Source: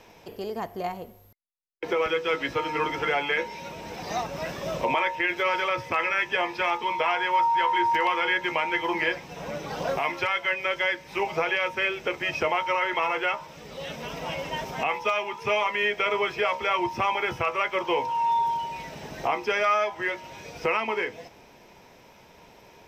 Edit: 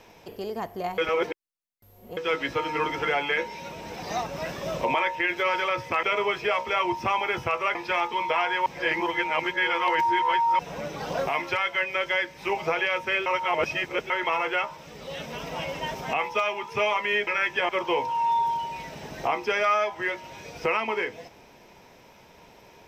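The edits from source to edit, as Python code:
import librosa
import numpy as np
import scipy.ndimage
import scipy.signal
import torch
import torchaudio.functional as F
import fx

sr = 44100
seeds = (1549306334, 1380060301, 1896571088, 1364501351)

y = fx.edit(x, sr, fx.reverse_span(start_s=0.98, length_s=1.19),
    fx.swap(start_s=6.03, length_s=0.42, other_s=15.97, other_length_s=1.72),
    fx.reverse_span(start_s=7.36, length_s=1.93),
    fx.reverse_span(start_s=11.96, length_s=0.84), tone=tone)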